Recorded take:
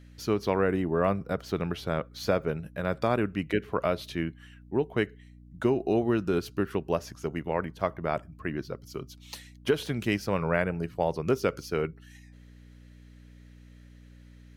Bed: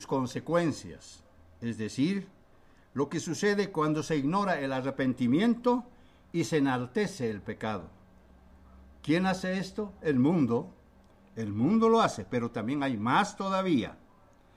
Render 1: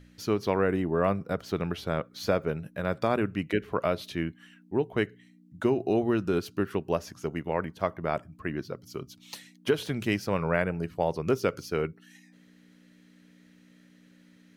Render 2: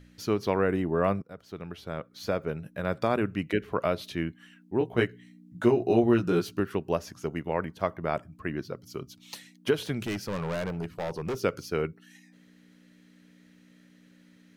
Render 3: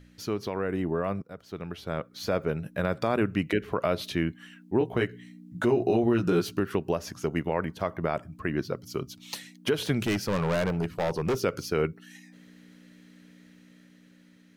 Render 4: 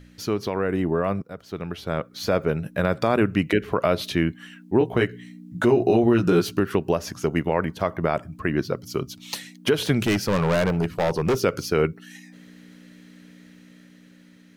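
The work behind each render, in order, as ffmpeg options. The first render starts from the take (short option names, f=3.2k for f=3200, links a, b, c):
-af "bandreject=f=60:t=h:w=4,bandreject=f=120:t=h:w=4"
-filter_complex "[0:a]asettb=1/sr,asplit=3[a][b][c];[a]atrim=end=4.794[d];[b]atrim=start=4.79:end=6.6,asetpts=PTS-STARTPTS,afade=t=in:d=0.004:c=qsin,afade=t=out:st=1.806:d=0.004:c=qsin,asplit=2[e][f];[f]adelay=17,volume=-2dB[g];[e][g]amix=inputs=2:normalize=0,atrim=end_sample=79821[h];[c]atrim=start=6.596[i];[d][h]acrossfade=d=0.004:c1=hsin:c2=qsin[j];[j][i]acrossfade=d=0.004:c1=qsin:c2=hsin,asettb=1/sr,asplit=3[k][l][m];[k]atrim=end=10.064[n];[l]atrim=start=10.06:end=11.42,asetpts=PTS-STARTPTS,afade=t=in:d=0.004:c=qsin,afade=t=out:st=1.356:d=0.004:c=qsin,volume=28dB,asoftclip=hard,volume=-28dB[o];[m]atrim=start=11.416[p];[n][o]acrossfade=d=0.004:c1=hsin:c2=qsin[q];[q][p]acrossfade=d=0.004:c1=qsin:c2=hsin,asplit=2[r][s];[r]atrim=end=1.22,asetpts=PTS-STARTPTS,afade=t=out:st=1.216:d=0.004:c=hsin:silence=0.141254[t];[s]atrim=start=1.22,asetpts=PTS-STARTPTS,afade=t=in:d=1.72:silence=0.141254[u];[t][u]concat=n=2:v=0:a=1"
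-af "alimiter=limit=-19.5dB:level=0:latency=1:release=122,dynaudnorm=f=700:g=5:m=5dB"
-af "volume=5.5dB"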